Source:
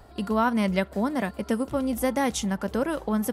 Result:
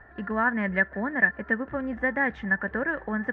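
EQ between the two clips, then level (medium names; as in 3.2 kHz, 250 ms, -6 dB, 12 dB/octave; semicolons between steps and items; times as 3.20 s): dynamic bell 1.2 kHz, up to -3 dB, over -37 dBFS; four-pole ladder low-pass 1.8 kHz, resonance 90%; +8.5 dB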